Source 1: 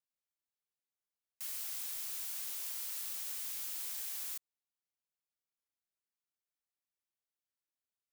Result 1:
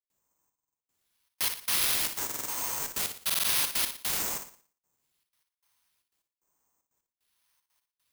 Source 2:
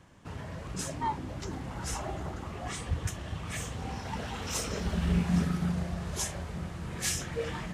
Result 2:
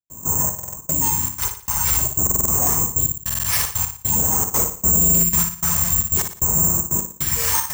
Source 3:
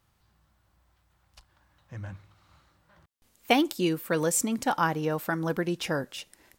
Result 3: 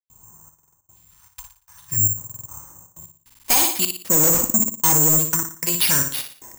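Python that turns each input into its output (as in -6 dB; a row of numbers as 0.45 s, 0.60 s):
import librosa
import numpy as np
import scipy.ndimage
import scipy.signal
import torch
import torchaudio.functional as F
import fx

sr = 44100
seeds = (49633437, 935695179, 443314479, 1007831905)

p1 = fx.highpass(x, sr, hz=44.0, slope=6)
p2 = fx.peak_eq(p1, sr, hz=1000.0, db=11.5, octaves=0.32)
p3 = fx.hum_notches(p2, sr, base_hz=60, count=4)
p4 = 10.0 ** (-23.0 / 20.0) * np.tanh(p3 / 10.0 ** (-23.0 / 20.0))
p5 = p3 + (p4 * 10.0 ** (-4.5 / 20.0))
p6 = fx.phaser_stages(p5, sr, stages=2, low_hz=260.0, high_hz=4300.0, hz=0.49, feedback_pct=45)
p7 = fx.step_gate(p6, sr, bpm=152, pattern='.xxxx.x.', floor_db=-60.0, edge_ms=4.5)
p8 = fx.air_absorb(p7, sr, metres=130.0)
p9 = p8 + fx.room_flutter(p8, sr, wall_m=10.0, rt60_s=0.44, dry=0)
p10 = (np.kron(p9[::6], np.eye(6)[0]) * 6)[:len(p9)]
p11 = fx.buffer_glitch(p10, sr, at_s=(0.54, 2.25, 3.25), block=2048, repeats=4)
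p12 = fx.slew_limit(p11, sr, full_power_hz=1400.0)
y = librosa.util.normalize(p12) * 10.0 ** (-6 / 20.0)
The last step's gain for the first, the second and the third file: +14.0 dB, +8.0 dB, +8.0 dB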